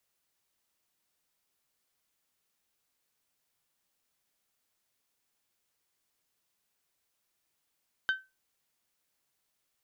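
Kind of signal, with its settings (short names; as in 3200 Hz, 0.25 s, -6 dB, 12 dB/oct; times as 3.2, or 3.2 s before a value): glass hit bell, lowest mode 1540 Hz, decay 0.24 s, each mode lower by 9 dB, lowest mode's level -22 dB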